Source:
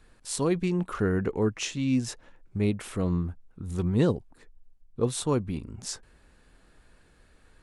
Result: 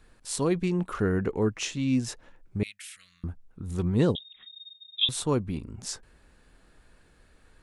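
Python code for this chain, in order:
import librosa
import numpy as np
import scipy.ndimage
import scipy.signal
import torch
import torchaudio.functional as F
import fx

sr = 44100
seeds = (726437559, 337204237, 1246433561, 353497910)

y = fx.cheby2_highpass(x, sr, hz=970.0, order=4, stop_db=40, at=(2.63, 3.24))
y = fx.freq_invert(y, sr, carrier_hz=3700, at=(4.15, 5.09))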